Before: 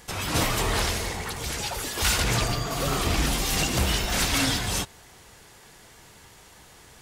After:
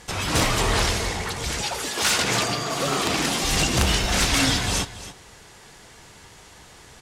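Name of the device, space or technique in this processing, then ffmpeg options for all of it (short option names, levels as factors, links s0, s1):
overflowing digital effects unit: -filter_complex "[0:a]aeval=exprs='(mod(5.01*val(0)+1,2)-1)/5.01':c=same,lowpass=8200,asettb=1/sr,asplit=3[s0][s1][s2];[s0]atrim=end=1.624[s3];[s1]atrim=start=1.62:end=3.44,asetpts=PTS-STARTPTS,afade=t=in:d=0.004:c=qsin,afade=t=out:st=1.816:d=0.004:c=qsin,highpass=180[s4];[s2]atrim=start=3.436[s5];[s3][s4]acrossfade=d=0.004:c1=hsin:c2=qsin[s6];[s6][s5]acrossfade=d=0.004:c1=qsin:c2=hsin,highshelf=f=11000:g=6,aecho=1:1:280:0.188,volume=1.5"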